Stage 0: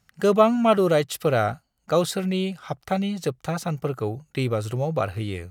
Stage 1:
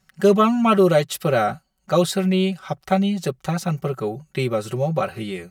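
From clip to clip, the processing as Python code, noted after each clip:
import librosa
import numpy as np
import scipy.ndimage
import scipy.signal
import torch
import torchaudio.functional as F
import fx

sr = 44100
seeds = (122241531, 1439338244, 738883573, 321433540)

y = x + 0.95 * np.pad(x, (int(5.3 * sr / 1000.0), 0))[:len(x)]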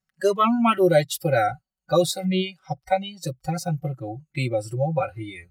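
y = fx.noise_reduce_blind(x, sr, reduce_db=20)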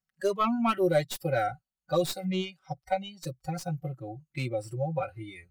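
y = fx.tracing_dist(x, sr, depth_ms=0.059)
y = y * librosa.db_to_amplitude(-7.0)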